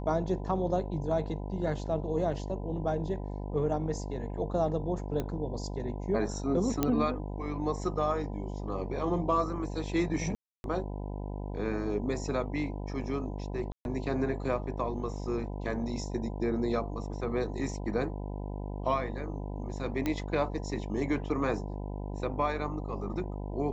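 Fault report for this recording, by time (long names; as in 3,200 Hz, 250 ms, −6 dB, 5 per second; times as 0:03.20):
mains buzz 50 Hz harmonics 20 −37 dBFS
0:05.20: click −20 dBFS
0:06.83: click −12 dBFS
0:10.35–0:10.64: drop-out 291 ms
0:13.72–0:13.85: drop-out 131 ms
0:20.06: click −17 dBFS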